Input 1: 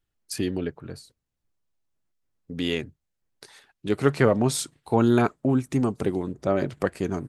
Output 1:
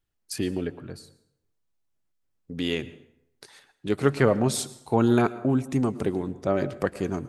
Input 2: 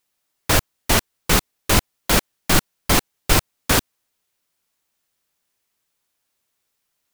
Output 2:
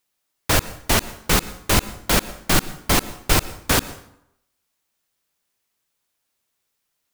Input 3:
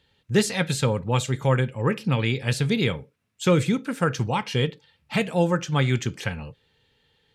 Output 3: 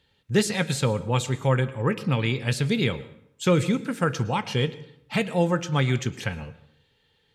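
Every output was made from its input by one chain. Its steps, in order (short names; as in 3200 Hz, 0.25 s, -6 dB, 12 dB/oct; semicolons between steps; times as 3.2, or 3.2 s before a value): plate-style reverb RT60 0.76 s, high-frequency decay 0.7×, pre-delay 95 ms, DRR 16.5 dB; gain -1 dB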